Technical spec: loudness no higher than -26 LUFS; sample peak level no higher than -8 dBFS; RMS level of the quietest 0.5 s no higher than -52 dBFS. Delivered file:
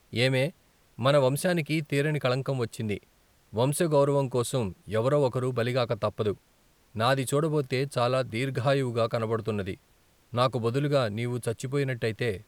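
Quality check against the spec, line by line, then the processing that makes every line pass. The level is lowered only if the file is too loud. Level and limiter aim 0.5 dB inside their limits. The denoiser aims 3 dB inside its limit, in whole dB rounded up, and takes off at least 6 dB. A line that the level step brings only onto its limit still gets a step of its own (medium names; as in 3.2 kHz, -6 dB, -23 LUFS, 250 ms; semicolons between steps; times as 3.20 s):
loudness -27.5 LUFS: pass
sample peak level -9.5 dBFS: pass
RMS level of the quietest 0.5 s -63 dBFS: pass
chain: none needed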